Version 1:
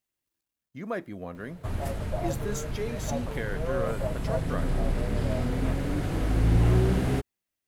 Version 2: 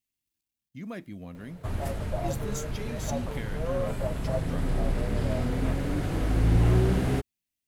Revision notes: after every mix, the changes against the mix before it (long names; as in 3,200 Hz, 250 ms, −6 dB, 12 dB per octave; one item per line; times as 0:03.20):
speech: add flat-topped bell 790 Hz −9.5 dB 2.6 octaves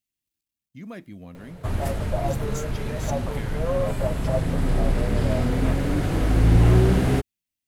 background +5.5 dB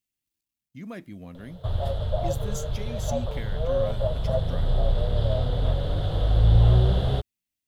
background: add drawn EQ curve 110 Hz 0 dB, 280 Hz −18 dB, 560 Hz +1 dB, 900 Hz −6 dB, 1,400 Hz −8 dB, 2,400 Hz −18 dB, 3,400 Hz +7 dB, 5,900 Hz −17 dB